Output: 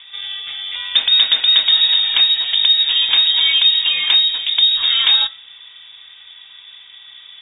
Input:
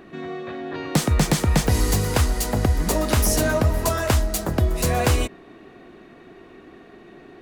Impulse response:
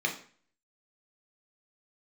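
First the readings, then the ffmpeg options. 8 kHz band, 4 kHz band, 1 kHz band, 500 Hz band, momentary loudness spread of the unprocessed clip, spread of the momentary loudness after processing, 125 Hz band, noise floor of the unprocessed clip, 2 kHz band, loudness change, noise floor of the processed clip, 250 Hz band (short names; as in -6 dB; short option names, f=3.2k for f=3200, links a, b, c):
under -40 dB, +23.0 dB, -7.5 dB, under -20 dB, 12 LU, 12 LU, under -35 dB, -47 dBFS, +6.0 dB, +10.0 dB, -42 dBFS, under -25 dB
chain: -filter_complex "[0:a]acrossover=split=3000[a][b];[b]acompressor=threshold=-31dB:ratio=4:attack=1:release=60[c];[a][c]amix=inputs=2:normalize=0,asplit=2[d][e];[1:a]atrim=start_sample=2205[f];[e][f]afir=irnorm=-1:irlink=0,volume=-21dB[g];[d][g]amix=inputs=2:normalize=0,lowpass=f=3.2k:t=q:w=0.5098,lowpass=f=3.2k:t=q:w=0.6013,lowpass=f=3.2k:t=q:w=0.9,lowpass=f=3.2k:t=q:w=2.563,afreqshift=-3800,volume=5dB"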